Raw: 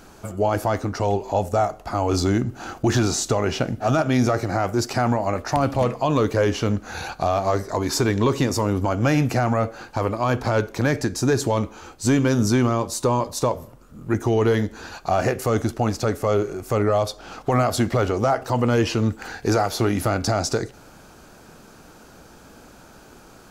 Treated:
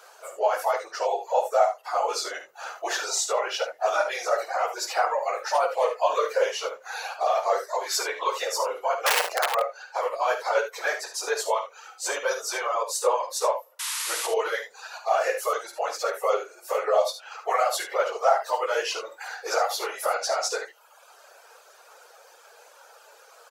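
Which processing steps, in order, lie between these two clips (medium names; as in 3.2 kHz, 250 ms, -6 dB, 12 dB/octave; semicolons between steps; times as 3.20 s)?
phase randomisation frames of 50 ms; 9.06–9.57 s: integer overflow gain 13 dB; elliptic high-pass 490 Hz, stop band 50 dB; reverb removal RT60 0.86 s; 13.79–14.27 s: painted sound noise 880–12000 Hz -31 dBFS; early reflections 51 ms -10.5 dB, 74 ms -10.5 dB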